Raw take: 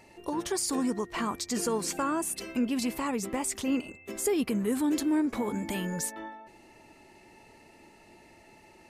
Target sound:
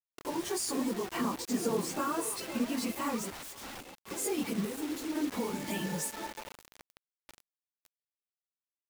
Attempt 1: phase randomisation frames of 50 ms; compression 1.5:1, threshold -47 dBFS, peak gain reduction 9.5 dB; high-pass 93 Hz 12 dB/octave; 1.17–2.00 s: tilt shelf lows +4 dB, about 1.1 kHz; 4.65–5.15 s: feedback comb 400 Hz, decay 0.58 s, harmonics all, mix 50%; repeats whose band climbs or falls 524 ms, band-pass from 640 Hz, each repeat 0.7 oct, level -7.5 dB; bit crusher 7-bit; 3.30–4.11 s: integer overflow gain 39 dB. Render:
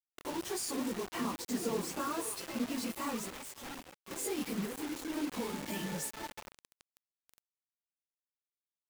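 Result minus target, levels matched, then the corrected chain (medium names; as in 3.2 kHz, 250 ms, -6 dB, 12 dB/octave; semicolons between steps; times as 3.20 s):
compression: peak gain reduction +3.5 dB
phase randomisation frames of 50 ms; compression 1.5:1, threshold -36 dBFS, peak gain reduction 6 dB; high-pass 93 Hz 12 dB/octave; 1.17–2.00 s: tilt shelf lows +4 dB, about 1.1 kHz; 4.65–5.15 s: feedback comb 400 Hz, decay 0.58 s, harmonics all, mix 50%; repeats whose band climbs or falls 524 ms, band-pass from 640 Hz, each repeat 0.7 oct, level -7.5 dB; bit crusher 7-bit; 3.30–4.11 s: integer overflow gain 39 dB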